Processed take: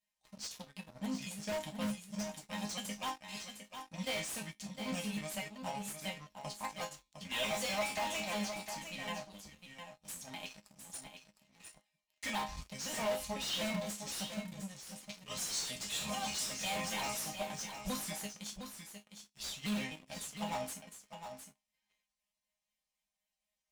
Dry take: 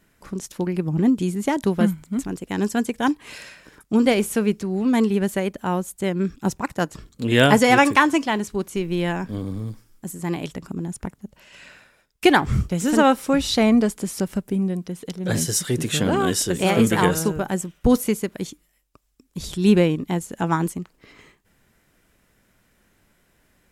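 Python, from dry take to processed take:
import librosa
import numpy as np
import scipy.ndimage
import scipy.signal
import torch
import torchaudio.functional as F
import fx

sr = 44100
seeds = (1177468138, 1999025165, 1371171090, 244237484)

p1 = fx.pitch_trill(x, sr, semitones=-4.5, every_ms=126)
p2 = scipy.signal.sosfilt(scipy.signal.butter(2, 77.0, 'highpass', fs=sr, output='sos'), p1)
p3 = fx.tone_stack(p2, sr, knobs='10-0-10')
p4 = fx.fixed_phaser(p3, sr, hz=380.0, stages=6)
p5 = fx.resonator_bank(p4, sr, root=56, chord='major', decay_s=0.29)
p6 = fx.leveller(p5, sr, passes=3)
p7 = (np.mod(10.0 ** (38.0 / 20.0) * p6 + 1.0, 2.0) - 1.0) / 10.0 ** (38.0 / 20.0)
p8 = p6 + (p7 * 10.0 ** (-4.0 / 20.0))
p9 = fx.high_shelf(p8, sr, hz=5500.0, db=-10.5)
p10 = p9 + fx.echo_single(p9, sr, ms=708, db=-8.5, dry=0)
y = p10 * 10.0 ** (4.5 / 20.0)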